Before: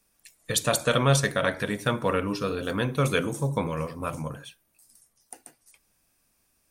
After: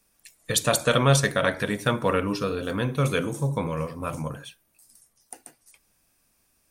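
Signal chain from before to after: 2.44–4.1 harmonic-percussive split percussive -4 dB; gain +2 dB

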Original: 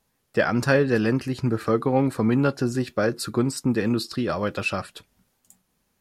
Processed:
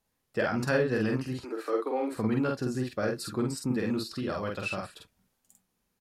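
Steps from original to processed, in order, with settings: 1.41–2.12 Chebyshev high-pass 290 Hz, order 5; doubler 47 ms -2.5 dB; gain -8.5 dB

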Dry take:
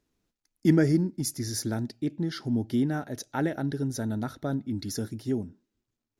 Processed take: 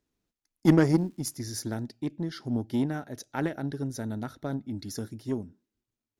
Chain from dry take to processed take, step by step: 0.85–1.35 crackle 600/s -> 180/s -49 dBFS; added harmonics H 7 -23 dB, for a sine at -8 dBFS; gain +1.5 dB

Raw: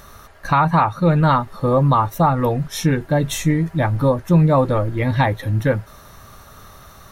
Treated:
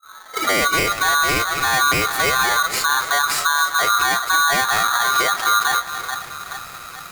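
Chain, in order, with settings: tape start at the beginning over 0.71 s; bell 1600 Hz -13.5 dB 0.52 oct; split-band echo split 620 Hz, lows 0.425 s, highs 0.264 s, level -16 dB; limiter -17 dBFS, peak gain reduction 11.5 dB; polarity switched at an audio rate 1300 Hz; gain +6 dB

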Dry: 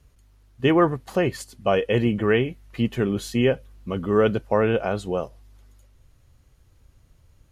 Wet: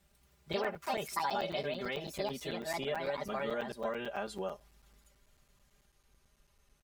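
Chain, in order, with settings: speed glide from 127% -> 93%; echoes that change speed 0.106 s, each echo +3 st, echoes 2; compressor 5:1, threshold -26 dBFS, peak gain reduction 14 dB; low shelf 380 Hz -11 dB; comb 5 ms, depth 95%; crackling interface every 0.11 s, samples 256, zero, from 0.53; gain -6 dB

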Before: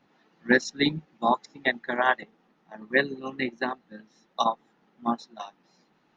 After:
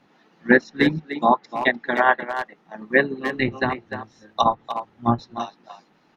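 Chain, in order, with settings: 3.34–5.41 octaver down 1 oct, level -2 dB; treble ducked by the level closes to 2200 Hz, closed at -21 dBFS; speakerphone echo 0.3 s, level -9 dB; gain +6 dB

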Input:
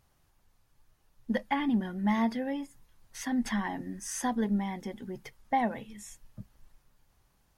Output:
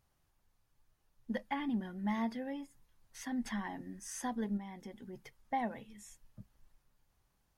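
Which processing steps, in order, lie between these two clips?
4.57–5.13 compressor 3:1, threshold -36 dBFS, peak gain reduction 5.5 dB; gain -7.5 dB

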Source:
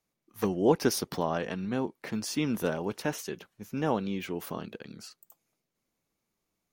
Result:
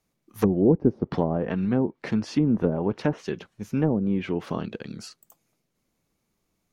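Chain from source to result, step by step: treble ducked by the level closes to 380 Hz, closed at -23.5 dBFS; low shelf 270 Hz +6 dB; gain +5 dB

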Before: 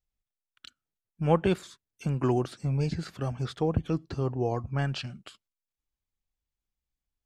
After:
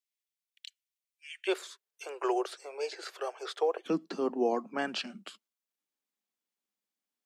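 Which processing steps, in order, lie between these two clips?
steep high-pass 1900 Hz 72 dB/oct, from 1.47 s 380 Hz, from 3.85 s 190 Hz; short-mantissa float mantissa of 8-bit; gain +1.5 dB

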